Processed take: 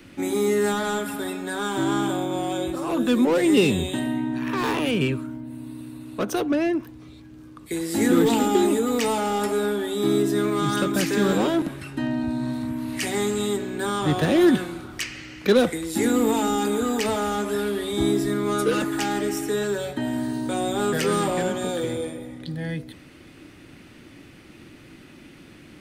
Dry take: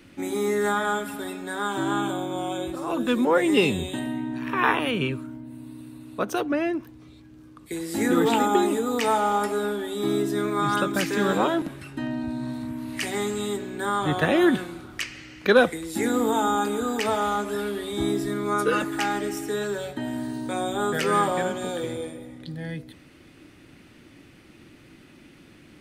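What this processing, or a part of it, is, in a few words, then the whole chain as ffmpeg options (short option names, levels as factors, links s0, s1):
one-band saturation: -filter_complex "[0:a]acrossover=split=470|3600[s0][s1][s2];[s1]asoftclip=type=tanh:threshold=0.0282[s3];[s0][s3][s2]amix=inputs=3:normalize=0,volume=1.58"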